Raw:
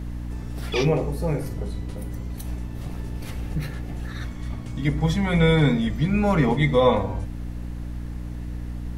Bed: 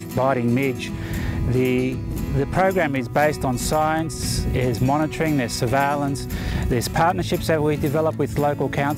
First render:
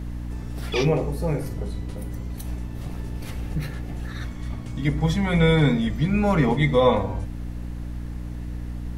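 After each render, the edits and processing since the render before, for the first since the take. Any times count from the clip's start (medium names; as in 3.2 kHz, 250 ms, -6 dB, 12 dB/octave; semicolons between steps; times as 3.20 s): no audible change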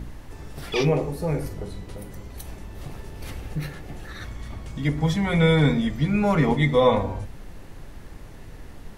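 de-hum 60 Hz, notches 5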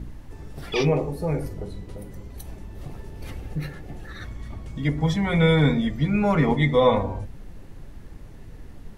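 noise reduction 6 dB, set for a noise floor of -42 dBFS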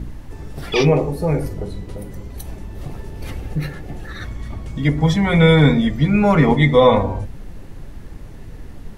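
trim +6.5 dB; peak limiter -1 dBFS, peak gain reduction 1 dB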